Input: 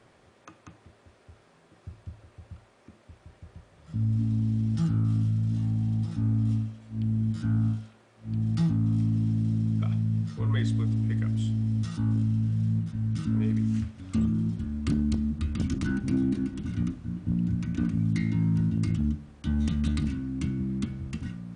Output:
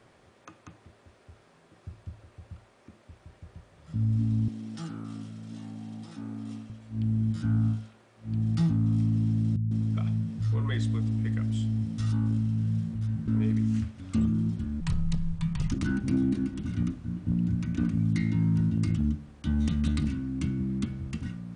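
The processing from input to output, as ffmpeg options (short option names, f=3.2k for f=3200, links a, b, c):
-filter_complex "[0:a]asettb=1/sr,asplit=3[a][b][c];[a]atrim=end=4.484[d];[b]atrim=start=4.48:end=6.7,asetpts=PTS-STARTPTS,afade=t=in:d=0.004:c=qsin,afade=t=out:st=2.216:d=0.004:c=qsin,highpass=330[e];[c]atrim=start=6.696[f];[d][e]acrossfade=d=0.004:c1=hsin:c2=qsin[g];[g][f]acrossfade=d=0.004:c1=qsin:c2=hsin,asettb=1/sr,asplit=3[h][i][j];[h]atrim=end=9.564[k];[i]atrim=start=9.56:end=13.28,asetpts=PTS-STARTPTS,afade=t=in:d=0.004:c=qsin,afade=t=out:st=3.716:d=0.004:c=qsin,acrossover=split=200[l][m];[m]adelay=150[n];[l][n]amix=inputs=2:normalize=0,atrim=end_sample=164052[o];[j]atrim=start=13.276[p];[k][o]acrossfade=d=0.004:c1=hsin:c2=qsin[q];[q][p]acrossfade=d=0.004:c1=qsin:c2=hsin,asettb=1/sr,asplit=3[r][s][t];[r]atrim=end=14.804[u];[s]atrim=start=14.8:end=15.72,asetpts=PTS-STARTPTS,afade=t=in:d=0.004:c=qsin,afade=t=out:st=0.916:d=0.004:c=qsin,afreqshift=-240[v];[t]atrim=start=15.716[w];[u][v]acrossfade=d=0.004:c1=hsin:c2=qsin[x];[x][w]acrossfade=d=0.004:c1=qsin:c2=hsin"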